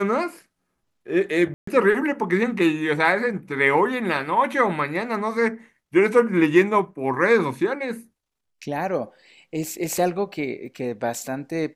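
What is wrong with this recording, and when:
1.54–1.67 gap 0.134 s

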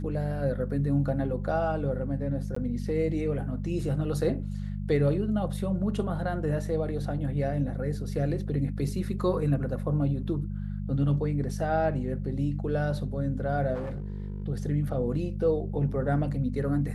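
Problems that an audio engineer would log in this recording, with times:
hum 50 Hz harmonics 4 -33 dBFS
2.55–2.56 gap 14 ms
13.74–14.44 clipped -30 dBFS

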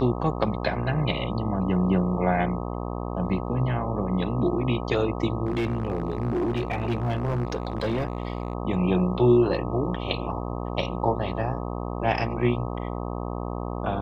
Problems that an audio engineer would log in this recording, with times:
buzz 60 Hz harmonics 21 -31 dBFS
5.45–8.53 clipped -21.5 dBFS

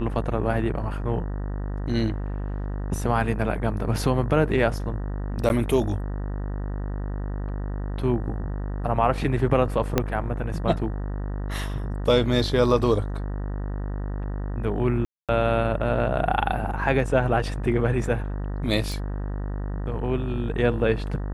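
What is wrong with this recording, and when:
buzz 50 Hz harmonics 38 -29 dBFS
5.49–5.5 gap 9.6 ms
9.98 pop -6 dBFS
15.05–15.29 gap 0.237 s
18.92 pop

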